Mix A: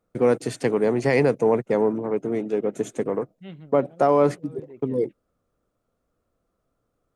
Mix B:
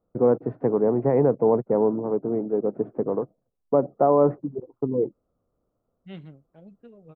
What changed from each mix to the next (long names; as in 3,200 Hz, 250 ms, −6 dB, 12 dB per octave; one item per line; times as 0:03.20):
first voice: add low-pass filter 1,100 Hz 24 dB per octave
second voice: entry +2.65 s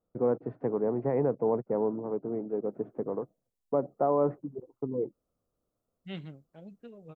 first voice −8.0 dB
master: add high-shelf EQ 2,700 Hz +9 dB